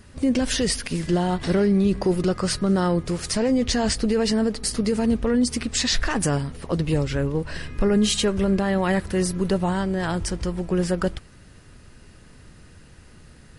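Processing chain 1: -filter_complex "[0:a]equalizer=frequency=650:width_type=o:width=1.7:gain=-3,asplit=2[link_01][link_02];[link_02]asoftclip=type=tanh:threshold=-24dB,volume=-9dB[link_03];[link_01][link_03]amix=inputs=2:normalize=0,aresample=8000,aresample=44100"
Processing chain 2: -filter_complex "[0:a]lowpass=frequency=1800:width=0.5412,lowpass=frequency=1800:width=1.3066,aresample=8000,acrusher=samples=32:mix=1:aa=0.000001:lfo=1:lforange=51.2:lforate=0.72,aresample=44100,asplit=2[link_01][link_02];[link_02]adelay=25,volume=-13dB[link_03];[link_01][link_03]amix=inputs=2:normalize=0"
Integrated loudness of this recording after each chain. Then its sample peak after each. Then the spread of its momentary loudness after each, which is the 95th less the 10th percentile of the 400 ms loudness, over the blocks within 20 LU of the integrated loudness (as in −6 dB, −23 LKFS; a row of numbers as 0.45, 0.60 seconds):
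−23.0, −25.0 LKFS; −10.5, −8.5 dBFS; 6, 9 LU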